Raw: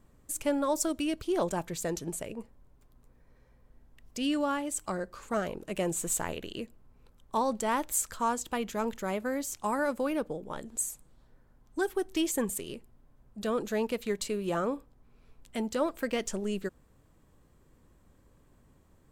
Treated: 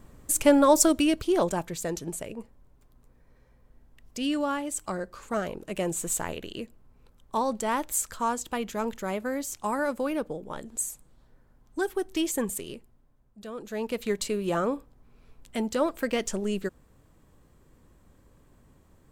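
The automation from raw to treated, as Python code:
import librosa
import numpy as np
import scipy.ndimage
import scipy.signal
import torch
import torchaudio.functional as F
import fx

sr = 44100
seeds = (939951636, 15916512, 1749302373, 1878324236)

y = fx.gain(x, sr, db=fx.line((0.82, 10.0), (1.75, 1.5), (12.66, 1.5), (13.51, -9.0), (14.02, 3.5)))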